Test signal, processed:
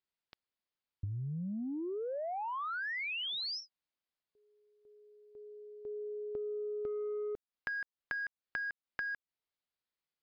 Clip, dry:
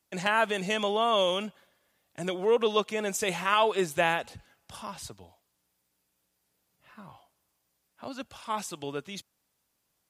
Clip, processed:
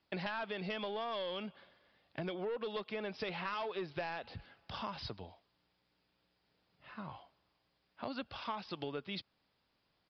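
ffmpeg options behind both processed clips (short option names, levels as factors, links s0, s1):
-af "aresample=11025,asoftclip=type=tanh:threshold=0.0944,aresample=44100,acompressor=threshold=0.0112:ratio=12,volume=1.33"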